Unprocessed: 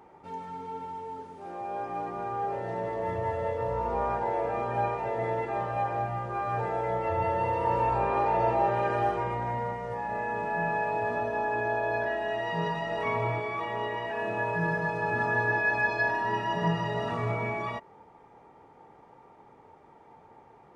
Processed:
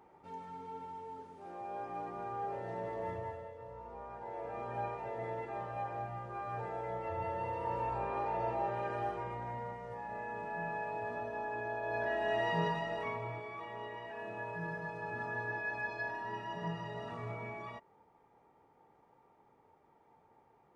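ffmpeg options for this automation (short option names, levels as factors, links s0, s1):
-af "volume=3.16,afade=t=out:st=3.05:d=0.44:silence=0.281838,afade=t=in:st=4.1:d=0.6:silence=0.375837,afade=t=in:st=11.81:d=0.61:silence=0.354813,afade=t=out:st=12.42:d=0.78:silence=0.281838"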